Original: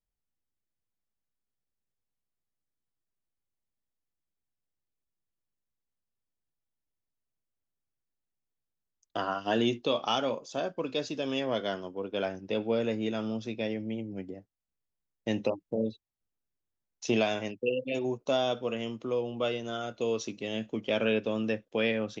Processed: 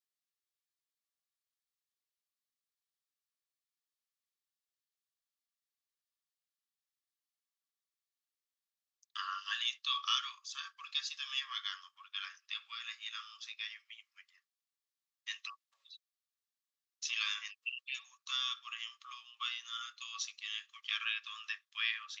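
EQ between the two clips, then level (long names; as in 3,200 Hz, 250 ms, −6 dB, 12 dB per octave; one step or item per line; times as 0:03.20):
Chebyshev high-pass with heavy ripple 1,100 Hz, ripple 6 dB
notch filter 1,500 Hz, Q 5.1
+3.5 dB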